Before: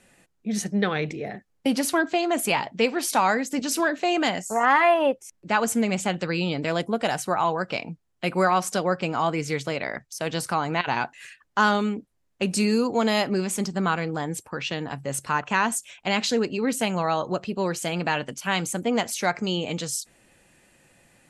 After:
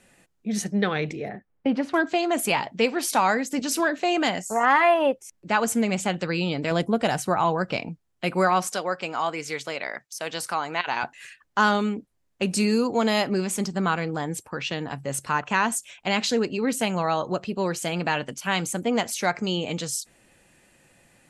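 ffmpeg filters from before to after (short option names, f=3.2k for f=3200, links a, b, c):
-filter_complex "[0:a]asettb=1/sr,asplit=3[a][b][c];[a]atrim=end=1.294[d];[b]atrim=start=1.29:end=1.94,asetpts=PTS-STARTPTS,afade=t=in:d=0.004:c=qsin,afade=t=out:st=0.646:d=0.004:c=qsin,lowpass=2k[e];[c]atrim=start=1.936[f];[d][e]acrossfade=d=0.004:c1=hsin:c2=qsin[g];[g][f]acrossfade=d=0.004:c1=qsin:c2=hsin,asettb=1/sr,asplit=3[h][i][j];[h]atrim=end=6.714[k];[i]atrim=start=6.71:end=7.89,asetpts=PTS-STARTPTS,afade=t=in:d=0.004:c=qsin,afade=t=out:st=1.176:d=0.004:c=qsin,lowshelf=f=280:g=6.5[l];[j]atrim=start=7.886[m];[k][l]acrossfade=d=0.004:c1=hsin:c2=qsin[n];[n][m]acrossfade=d=0.004:c1=qsin:c2=hsin,asettb=1/sr,asplit=3[o][p][q];[o]atrim=end=8.674[r];[p]atrim=start=8.67:end=11.03,asetpts=PTS-STARTPTS,afade=t=in:d=0.004:c=qsin,afade=t=out:st=2.356:d=0.004:c=qsin,highpass=f=620:p=1[s];[q]atrim=start=11.026[t];[r][s]acrossfade=d=0.004:c1=hsin:c2=qsin[u];[u][t]acrossfade=d=0.004:c1=qsin:c2=hsin"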